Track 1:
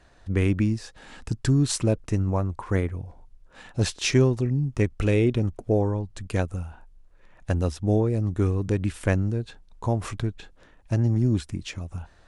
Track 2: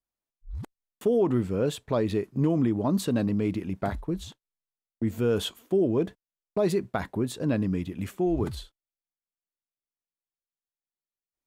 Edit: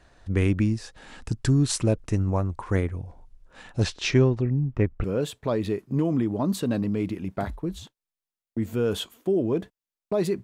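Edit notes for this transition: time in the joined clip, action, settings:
track 1
0:03.83–0:05.04: low-pass filter 6,100 Hz → 1,600 Hz
0:05.04: continue with track 2 from 0:01.49

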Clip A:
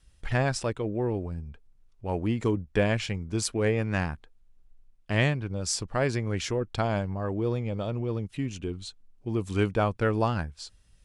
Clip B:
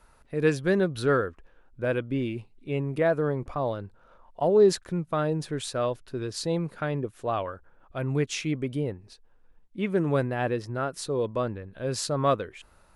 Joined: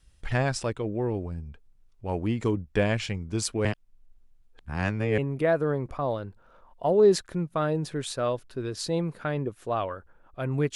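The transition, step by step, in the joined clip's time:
clip A
0:03.65–0:05.18: reverse
0:05.18: continue with clip B from 0:02.75

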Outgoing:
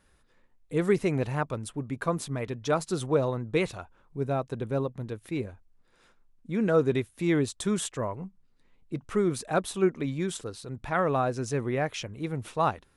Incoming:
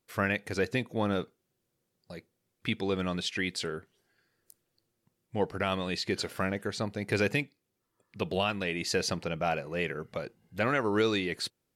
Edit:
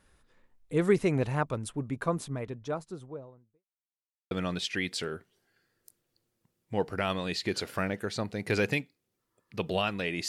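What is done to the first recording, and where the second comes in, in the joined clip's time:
outgoing
0:01.66–0:03.65: fade out and dull
0:03.65–0:04.31: silence
0:04.31: continue with incoming from 0:02.93

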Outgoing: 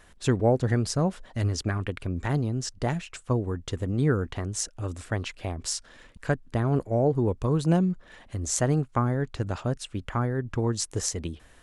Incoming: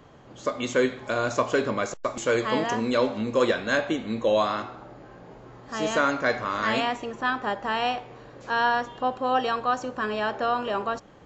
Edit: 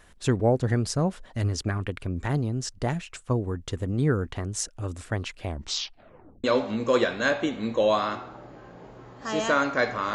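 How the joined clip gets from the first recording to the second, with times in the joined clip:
outgoing
0:05.46: tape stop 0.98 s
0:06.44: continue with incoming from 0:02.91

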